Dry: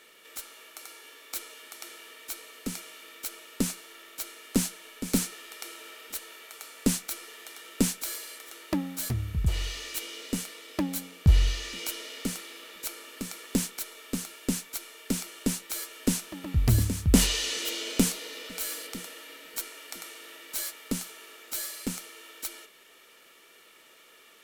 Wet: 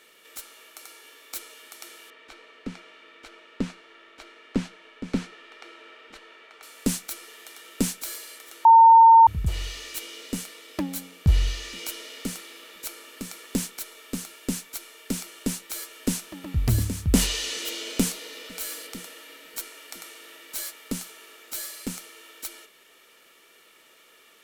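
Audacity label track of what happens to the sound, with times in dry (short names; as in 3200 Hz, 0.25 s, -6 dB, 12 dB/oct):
2.100000	6.630000	LPF 2800 Hz
8.650000	9.270000	bleep 909 Hz -8.5 dBFS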